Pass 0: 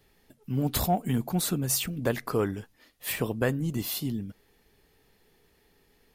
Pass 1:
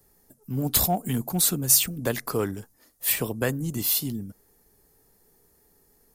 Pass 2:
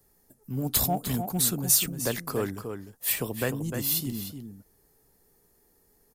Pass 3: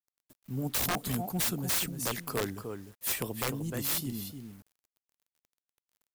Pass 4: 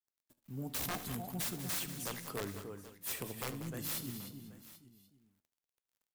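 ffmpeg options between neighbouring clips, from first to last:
-filter_complex "[0:a]highshelf=f=3.5k:g=11,acrossover=split=240|1600|5400[a][b][c][d];[c]aeval=exprs='sgn(val(0))*max(abs(val(0))-0.00237,0)':c=same[e];[a][b][e][d]amix=inputs=4:normalize=0"
-filter_complex "[0:a]asplit=2[a][b];[b]adelay=303.2,volume=-7dB,highshelf=f=4k:g=-6.82[c];[a][c]amix=inputs=2:normalize=0,volume=-3dB"
-af "aeval=exprs='(mod(9.44*val(0)+1,2)-1)/9.44':c=same,acrusher=bits=8:mix=0:aa=0.000001,volume=-3.5dB"
-filter_complex "[0:a]flanger=delay=9.8:depth=9.2:regen=82:speed=0.4:shape=triangular,asplit=2[a][b];[b]aecho=0:1:73|192|781:0.168|0.251|0.133[c];[a][c]amix=inputs=2:normalize=0,volume=-3.5dB"

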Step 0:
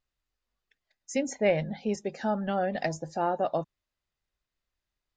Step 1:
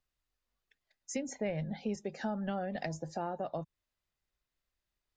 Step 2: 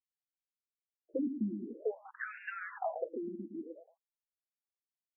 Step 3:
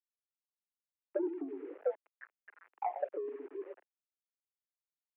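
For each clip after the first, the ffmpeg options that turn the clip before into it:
-filter_complex "[0:a]acrossover=split=180[a][b];[b]acompressor=threshold=-34dB:ratio=4[c];[a][c]amix=inputs=2:normalize=0,volume=-1.5dB"
-filter_complex "[0:a]aeval=exprs='val(0)*gte(abs(val(0)),0.00708)':c=same,asplit=2[a][b];[b]adelay=113,lowpass=f=1k:p=1,volume=-8dB,asplit=2[c][d];[d]adelay=113,lowpass=f=1k:p=1,volume=0.26,asplit=2[e][f];[f]adelay=113,lowpass=f=1k:p=1,volume=0.26[g];[c][e][g]amix=inputs=3:normalize=0[h];[a][h]amix=inputs=2:normalize=0,afftfilt=real='re*between(b*sr/1024,250*pow(2000/250,0.5+0.5*sin(2*PI*0.51*pts/sr))/1.41,250*pow(2000/250,0.5+0.5*sin(2*PI*0.51*pts/sr))*1.41)':imag='im*between(b*sr/1024,250*pow(2000/250,0.5+0.5*sin(2*PI*0.51*pts/sr))/1.41,250*pow(2000/250,0.5+0.5*sin(2*PI*0.51*pts/sr))*1.41)':win_size=1024:overlap=0.75,volume=7.5dB"
-af "adynamicsmooth=sensitivity=1:basefreq=510,aeval=exprs='val(0)*gte(abs(val(0)),0.002)':c=same,highpass=f=280:t=q:w=0.5412,highpass=f=280:t=q:w=1.307,lowpass=f=2.3k:t=q:w=0.5176,lowpass=f=2.3k:t=q:w=0.7071,lowpass=f=2.3k:t=q:w=1.932,afreqshift=67,volume=3dB"

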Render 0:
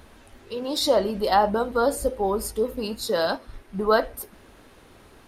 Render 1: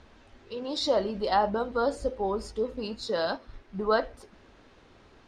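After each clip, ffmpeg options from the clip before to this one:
-af "lowpass=f=6.4k:w=0.5412,lowpass=f=6.4k:w=1.3066,volume=-5dB"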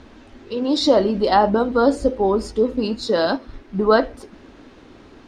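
-af "equalizer=f=280:t=o:w=0.85:g=9,volume=8dB"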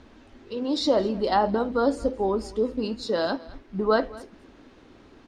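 -af "aecho=1:1:219:0.0944,volume=-6.5dB"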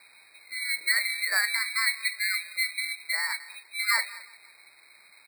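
-af "lowpass=f=2.1k:t=q:w=0.5098,lowpass=f=2.1k:t=q:w=0.6013,lowpass=f=2.1k:t=q:w=0.9,lowpass=f=2.1k:t=q:w=2.563,afreqshift=-2500,aecho=1:1:176|352|528:0.0708|0.0304|0.0131,acrusher=samples=7:mix=1:aa=0.000001,volume=-4dB"

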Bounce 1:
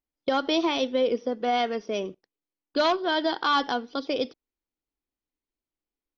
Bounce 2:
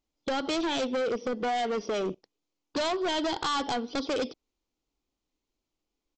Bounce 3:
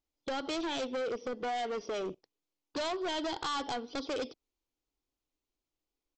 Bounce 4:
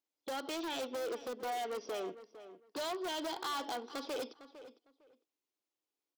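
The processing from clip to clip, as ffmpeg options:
-af "equalizer=f=1.7k:w=2.5:g=-8.5,acompressor=threshold=-29dB:ratio=6,aresample=16000,asoftclip=type=hard:threshold=-34.5dB,aresample=44100,volume=8.5dB"
-af "equalizer=f=210:w=3.2:g=-5.5,volume=-5.5dB"
-filter_complex "[0:a]highpass=270,asplit=2[a][b];[b]aeval=exprs='(mod(25.1*val(0)+1,2)-1)/25.1':c=same,volume=-7dB[c];[a][c]amix=inputs=2:normalize=0,asplit=2[d][e];[e]adelay=455,lowpass=f=2.8k:p=1,volume=-13.5dB,asplit=2[f][g];[g]adelay=455,lowpass=f=2.8k:p=1,volume=0.21[h];[d][f][h]amix=inputs=3:normalize=0,volume=-6dB"

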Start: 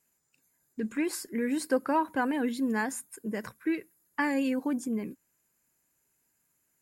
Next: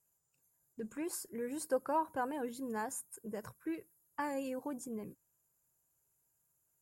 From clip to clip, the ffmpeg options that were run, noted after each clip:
-af "equalizer=f=125:t=o:w=1:g=4,equalizer=f=250:t=o:w=1:g=-12,equalizer=f=2k:t=o:w=1:g=-12,equalizer=f=4k:t=o:w=1:g=-8,volume=-2.5dB"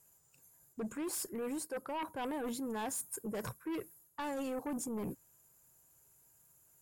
-af "areverse,acompressor=threshold=-44dB:ratio=10,areverse,aeval=exprs='0.0168*sin(PI/2*2.24*val(0)/0.0168)':c=same,volume=1dB"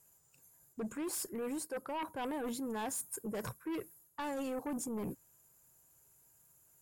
-af anull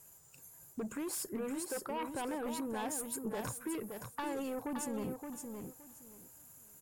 -filter_complex "[0:a]acompressor=threshold=-47dB:ratio=4,asplit=2[a][b];[b]aecho=0:1:570|1140|1710:0.501|0.1|0.02[c];[a][c]amix=inputs=2:normalize=0,volume=8dB"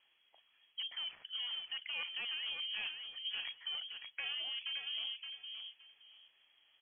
-af "tremolo=f=170:d=0.333,acrusher=bits=8:mode=log:mix=0:aa=0.000001,lowpass=f=2.9k:t=q:w=0.5098,lowpass=f=2.9k:t=q:w=0.6013,lowpass=f=2.9k:t=q:w=0.9,lowpass=f=2.9k:t=q:w=2.563,afreqshift=-3400,volume=-1dB"

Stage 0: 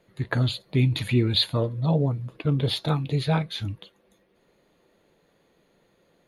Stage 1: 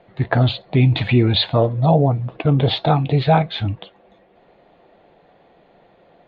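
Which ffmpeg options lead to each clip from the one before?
-filter_complex "[0:a]lowpass=f=3.6k:w=0.5412,lowpass=f=3.6k:w=1.3066,equalizer=f=730:w=2.8:g=12.5,asplit=2[a][b];[b]alimiter=limit=-17.5dB:level=0:latency=1,volume=0dB[c];[a][c]amix=inputs=2:normalize=0,volume=2.5dB"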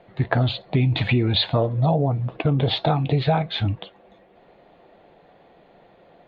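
-af "acompressor=threshold=-16dB:ratio=5"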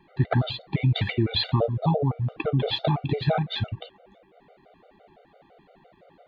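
-af "afftfilt=real='re*gt(sin(2*PI*5.9*pts/sr)*(1-2*mod(floor(b*sr/1024/390),2)),0)':imag='im*gt(sin(2*PI*5.9*pts/sr)*(1-2*mod(floor(b*sr/1024/390),2)),0)':win_size=1024:overlap=0.75"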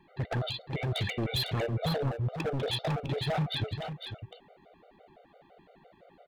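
-filter_complex "[0:a]volume=24.5dB,asoftclip=hard,volume=-24.5dB,asplit=2[a][b];[b]aecho=0:1:503:0.422[c];[a][c]amix=inputs=2:normalize=0,volume=-3dB"

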